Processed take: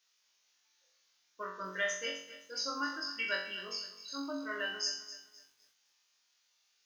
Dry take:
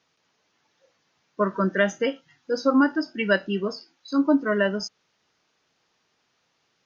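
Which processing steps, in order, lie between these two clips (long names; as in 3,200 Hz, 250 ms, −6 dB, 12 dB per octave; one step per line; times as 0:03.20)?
first difference
flutter between parallel walls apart 3.7 metres, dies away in 0.54 s
feedback echo at a low word length 258 ms, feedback 35%, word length 10 bits, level −14 dB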